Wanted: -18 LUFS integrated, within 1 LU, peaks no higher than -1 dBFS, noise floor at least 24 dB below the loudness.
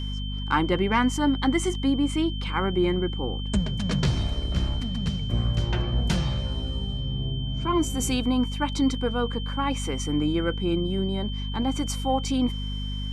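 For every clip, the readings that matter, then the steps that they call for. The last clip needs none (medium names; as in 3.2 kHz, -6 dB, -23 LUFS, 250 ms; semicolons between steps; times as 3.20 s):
hum 50 Hz; highest harmonic 250 Hz; hum level -28 dBFS; steady tone 3.1 kHz; tone level -37 dBFS; loudness -26.5 LUFS; peak level -10.5 dBFS; loudness target -18.0 LUFS
-> de-hum 50 Hz, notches 5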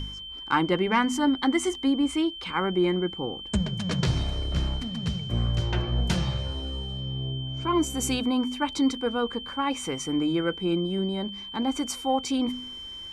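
hum not found; steady tone 3.1 kHz; tone level -37 dBFS
-> band-stop 3.1 kHz, Q 30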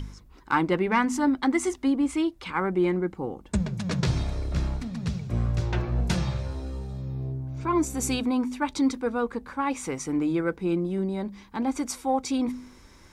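steady tone not found; loudness -27.5 LUFS; peak level -11.5 dBFS; loudness target -18.0 LUFS
-> trim +9.5 dB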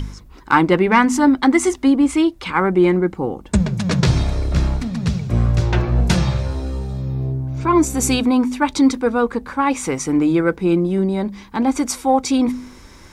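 loudness -18.0 LUFS; peak level -2.0 dBFS; noise floor -42 dBFS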